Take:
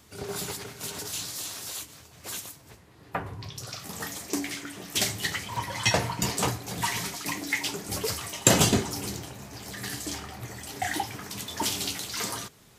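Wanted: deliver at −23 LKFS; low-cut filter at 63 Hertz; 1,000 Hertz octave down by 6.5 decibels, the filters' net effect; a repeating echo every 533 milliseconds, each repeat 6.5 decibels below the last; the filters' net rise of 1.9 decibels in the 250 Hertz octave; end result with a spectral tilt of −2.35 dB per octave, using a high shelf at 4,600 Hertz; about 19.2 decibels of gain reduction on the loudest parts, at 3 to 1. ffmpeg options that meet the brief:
ffmpeg -i in.wav -af "highpass=63,equalizer=frequency=250:width_type=o:gain=3,equalizer=frequency=1000:width_type=o:gain=-9,highshelf=frequency=4600:gain=6.5,acompressor=threshold=-42dB:ratio=3,aecho=1:1:533|1066|1599|2132|2665|3198:0.473|0.222|0.105|0.0491|0.0231|0.0109,volume=16dB" out.wav

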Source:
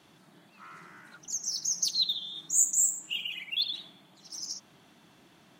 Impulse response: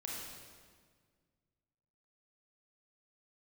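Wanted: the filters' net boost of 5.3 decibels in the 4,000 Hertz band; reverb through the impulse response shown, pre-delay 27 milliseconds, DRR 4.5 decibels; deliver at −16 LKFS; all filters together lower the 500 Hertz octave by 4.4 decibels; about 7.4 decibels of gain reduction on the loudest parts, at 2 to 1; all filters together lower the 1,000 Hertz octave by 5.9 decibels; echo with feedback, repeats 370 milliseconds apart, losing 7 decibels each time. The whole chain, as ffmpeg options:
-filter_complex "[0:a]equalizer=frequency=500:width_type=o:gain=-4,equalizer=frequency=1000:width_type=o:gain=-8.5,equalizer=frequency=4000:width_type=o:gain=6.5,acompressor=threshold=-31dB:ratio=2,aecho=1:1:370|740|1110|1480|1850:0.447|0.201|0.0905|0.0407|0.0183,asplit=2[link_01][link_02];[1:a]atrim=start_sample=2205,adelay=27[link_03];[link_02][link_03]afir=irnorm=-1:irlink=0,volume=-4.5dB[link_04];[link_01][link_04]amix=inputs=2:normalize=0,volume=13dB"

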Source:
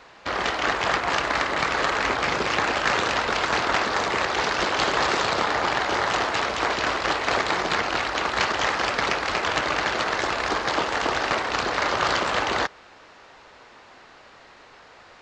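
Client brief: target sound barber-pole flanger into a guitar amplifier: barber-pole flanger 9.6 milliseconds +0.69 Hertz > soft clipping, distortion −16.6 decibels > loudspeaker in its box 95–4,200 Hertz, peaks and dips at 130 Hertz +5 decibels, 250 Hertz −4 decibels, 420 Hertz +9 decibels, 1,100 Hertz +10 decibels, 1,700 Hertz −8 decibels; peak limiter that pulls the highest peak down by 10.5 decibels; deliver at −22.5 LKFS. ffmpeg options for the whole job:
ffmpeg -i in.wav -filter_complex "[0:a]alimiter=limit=-19dB:level=0:latency=1,asplit=2[link_01][link_02];[link_02]adelay=9.6,afreqshift=0.69[link_03];[link_01][link_03]amix=inputs=2:normalize=1,asoftclip=threshold=-26.5dB,highpass=95,equalizer=frequency=130:width_type=q:width=4:gain=5,equalizer=frequency=250:width_type=q:width=4:gain=-4,equalizer=frequency=420:width_type=q:width=4:gain=9,equalizer=frequency=1100:width_type=q:width=4:gain=10,equalizer=frequency=1700:width_type=q:width=4:gain=-8,lowpass=frequency=4200:width=0.5412,lowpass=frequency=4200:width=1.3066,volume=8dB" out.wav

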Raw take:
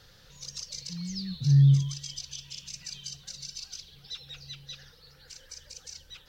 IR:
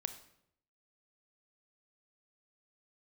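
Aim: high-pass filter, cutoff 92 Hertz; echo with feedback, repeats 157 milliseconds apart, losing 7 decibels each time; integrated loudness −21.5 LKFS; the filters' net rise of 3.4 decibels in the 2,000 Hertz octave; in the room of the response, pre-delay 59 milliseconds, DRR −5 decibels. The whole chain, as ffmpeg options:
-filter_complex "[0:a]highpass=92,equalizer=frequency=2000:width_type=o:gain=4.5,aecho=1:1:157|314|471|628|785:0.447|0.201|0.0905|0.0407|0.0183,asplit=2[link_01][link_02];[1:a]atrim=start_sample=2205,adelay=59[link_03];[link_02][link_03]afir=irnorm=-1:irlink=0,volume=6dB[link_04];[link_01][link_04]amix=inputs=2:normalize=0,volume=-1.5dB"

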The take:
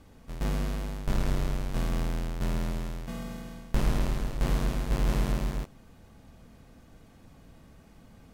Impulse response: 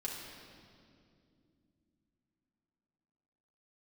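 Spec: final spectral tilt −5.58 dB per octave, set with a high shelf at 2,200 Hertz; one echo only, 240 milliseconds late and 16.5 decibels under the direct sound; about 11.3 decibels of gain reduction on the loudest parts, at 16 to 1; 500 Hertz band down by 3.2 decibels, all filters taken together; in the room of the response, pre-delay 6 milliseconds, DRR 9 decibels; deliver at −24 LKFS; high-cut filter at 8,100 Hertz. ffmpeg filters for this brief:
-filter_complex "[0:a]lowpass=8100,equalizer=frequency=500:width_type=o:gain=-4.5,highshelf=frequency=2200:gain=4.5,acompressor=threshold=-31dB:ratio=16,aecho=1:1:240:0.15,asplit=2[link_01][link_02];[1:a]atrim=start_sample=2205,adelay=6[link_03];[link_02][link_03]afir=irnorm=-1:irlink=0,volume=-10dB[link_04];[link_01][link_04]amix=inputs=2:normalize=0,volume=14dB"

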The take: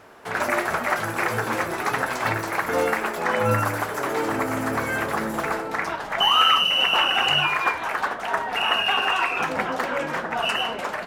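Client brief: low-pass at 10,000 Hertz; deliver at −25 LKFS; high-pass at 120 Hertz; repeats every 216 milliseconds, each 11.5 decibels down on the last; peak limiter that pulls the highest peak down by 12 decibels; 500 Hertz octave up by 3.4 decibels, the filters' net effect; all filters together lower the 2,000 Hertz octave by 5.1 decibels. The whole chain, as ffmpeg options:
ffmpeg -i in.wav -af "highpass=120,lowpass=10000,equalizer=frequency=500:width_type=o:gain=4.5,equalizer=frequency=2000:width_type=o:gain=-7.5,alimiter=limit=-20dB:level=0:latency=1,aecho=1:1:216|432|648:0.266|0.0718|0.0194,volume=3dB" out.wav

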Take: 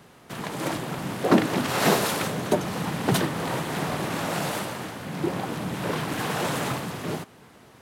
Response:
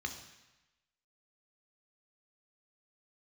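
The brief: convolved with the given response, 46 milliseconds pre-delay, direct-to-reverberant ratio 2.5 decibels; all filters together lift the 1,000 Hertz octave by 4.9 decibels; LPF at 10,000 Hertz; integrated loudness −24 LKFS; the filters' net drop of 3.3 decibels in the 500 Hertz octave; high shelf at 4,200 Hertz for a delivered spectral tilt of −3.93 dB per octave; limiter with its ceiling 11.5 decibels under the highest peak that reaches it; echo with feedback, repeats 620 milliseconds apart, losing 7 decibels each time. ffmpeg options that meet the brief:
-filter_complex "[0:a]lowpass=10000,equalizer=frequency=500:width_type=o:gain=-7,equalizer=frequency=1000:width_type=o:gain=8,highshelf=frequency=4200:gain=4,alimiter=limit=-17dB:level=0:latency=1,aecho=1:1:620|1240|1860|2480|3100:0.447|0.201|0.0905|0.0407|0.0183,asplit=2[link_01][link_02];[1:a]atrim=start_sample=2205,adelay=46[link_03];[link_02][link_03]afir=irnorm=-1:irlink=0,volume=-4dB[link_04];[link_01][link_04]amix=inputs=2:normalize=0,volume=1.5dB"

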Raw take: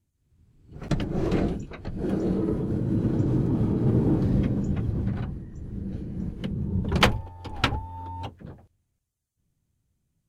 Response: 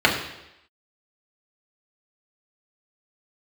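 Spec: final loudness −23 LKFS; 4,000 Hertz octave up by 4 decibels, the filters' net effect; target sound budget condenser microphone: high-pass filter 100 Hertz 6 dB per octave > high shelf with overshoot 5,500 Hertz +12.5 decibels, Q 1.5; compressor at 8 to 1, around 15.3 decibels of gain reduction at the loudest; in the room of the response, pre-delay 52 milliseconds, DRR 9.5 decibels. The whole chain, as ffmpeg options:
-filter_complex "[0:a]equalizer=frequency=4000:width_type=o:gain=8,acompressor=threshold=-28dB:ratio=8,asplit=2[link_01][link_02];[1:a]atrim=start_sample=2205,adelay=52[link_03];[link_02][link_03]afir=irnorm=-1:irlink=0,volume=-31dB[link_04];[link_01][link_04]amix=inputs=2:normalize=0,highpass=frequency=100:poles=1,highshelf=frequency=5500:width_type=q:width=1.5:gain=12.5,volume=12dB"

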